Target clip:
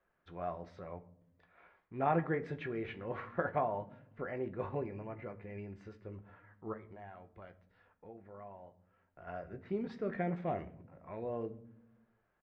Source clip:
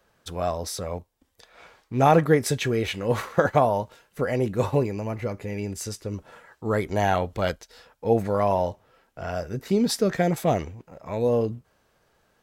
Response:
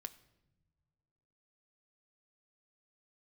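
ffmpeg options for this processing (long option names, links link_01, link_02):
-filter_complex "[0:a]crystalizer=i=5:c=0,asplit=3[link_01][link_02][link_03];[link_01]afade=type=out:start_time=6.72:duration=0.02[link_04];[link_02]acompressor=threshold=-39dB:ratio=3,afade=type=in:start_time=6.72:duration=0.02,afade=type=out:start_time=9.26:duration=0.02[link_05];[link_03]afade=type=in:start_time=9.26:duration=0.02[link_06];[link_04][link_05][link_06]amix=inputs=3:normalize=0,lowpass=frequency=2000:width=0.5412,lowpass=frequency=2000:width=1.3066,asplit=2[link_07][link_08];[link_08]adelay=18,volume=-11.5dB[link_09];[link_07][link_09]amix=inputs=2:normalize=0[link_10];[1:a]atrim=start_sample=2205,asetrate=74970,aresample=44100[link_11];[link_10][link_11]afir=irnorm=-1:irlink=0,volume=-6dB"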